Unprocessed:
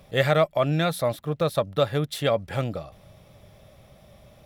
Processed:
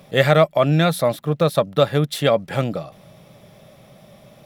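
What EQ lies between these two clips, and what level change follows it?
resonant low shelf 110 Hz -10.5 dB, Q 1.5; +5.5 dB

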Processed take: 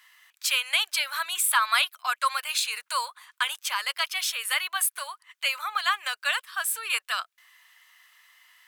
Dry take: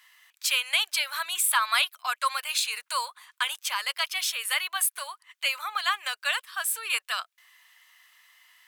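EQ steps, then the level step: peaking EQ 1.4 kHz +2.5 dB; 0.0 dB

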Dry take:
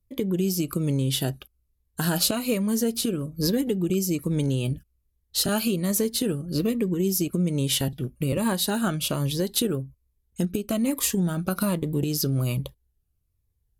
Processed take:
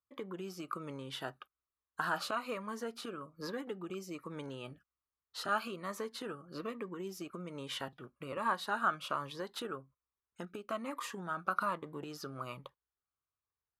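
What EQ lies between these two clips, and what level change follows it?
band-pass filter 1.2 kHz, Q 3.5; +4.5 dB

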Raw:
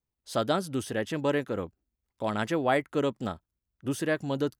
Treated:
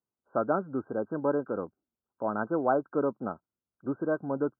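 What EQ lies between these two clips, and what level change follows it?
high-pass 190 Hz 12 dB/octave; brick-wall FIR low-pass 1.6 kHz; 0.0 dB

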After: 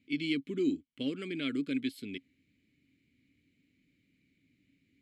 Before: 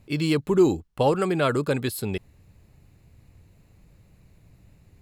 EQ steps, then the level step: vowel filter i; treble shelf 2.1 kHz +9.5 dB; 0.0 dB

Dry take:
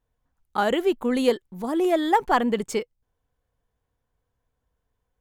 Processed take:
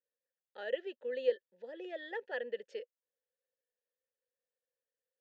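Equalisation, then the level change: vowel filter e; cabinet simulation 230–5700 Hz, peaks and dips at 310 Hz -6 dB, 720 Hz -9 dB, 1.2 kHz -6 dB, 2.3 kHz -10 dB; bass shelf 410 Hz -11.5 dB; +1.0 dB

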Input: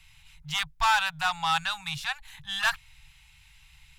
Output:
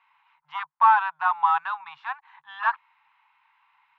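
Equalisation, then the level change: resonant high-pass 1 kHz, resonance Q 4.9; low-pass 1.5 kHz 12 dB/octave; distance through air 150 m; 0.0 dB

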